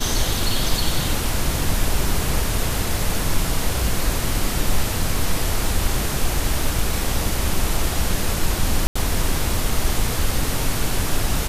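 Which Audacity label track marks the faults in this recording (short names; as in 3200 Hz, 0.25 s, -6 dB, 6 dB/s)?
8.870000	8.960000	gap 85 ms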